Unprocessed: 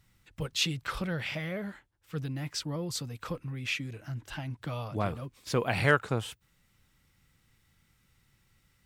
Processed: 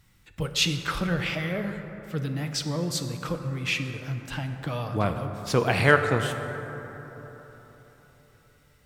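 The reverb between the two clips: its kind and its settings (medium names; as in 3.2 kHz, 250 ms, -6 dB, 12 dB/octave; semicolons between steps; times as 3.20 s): plate-style reverb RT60 4 s, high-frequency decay 0.35×, DRR 6 dB; trim +5 dB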